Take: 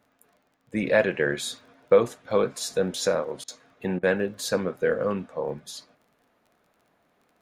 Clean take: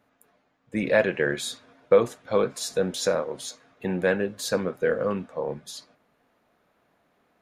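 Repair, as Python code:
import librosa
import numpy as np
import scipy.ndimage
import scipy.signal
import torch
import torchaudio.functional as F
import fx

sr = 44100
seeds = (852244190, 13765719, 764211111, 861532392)

y = fx.fix_declick_ar(x, sr, threshold=6.5)
y = fx.fix_interpolate(y, sr, at_s=(3.44, 3.99), length_ms=40.0)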